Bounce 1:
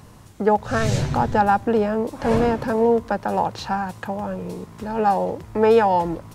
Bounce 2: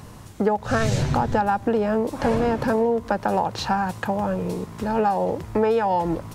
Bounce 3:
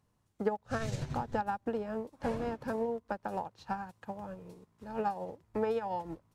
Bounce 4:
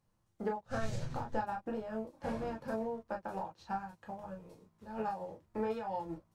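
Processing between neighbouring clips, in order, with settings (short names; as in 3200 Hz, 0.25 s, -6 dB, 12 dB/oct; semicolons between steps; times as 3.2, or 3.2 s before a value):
compressor 10:1, threshold -21 dBFS, peak gain reduction 10.5 dB; gain +4 dB
upward expander 2.5:1, over -33 dBFS; gain -8.5 dB
reverb, pre-delay 6 ms, DRR 0 dB; gain -6 dB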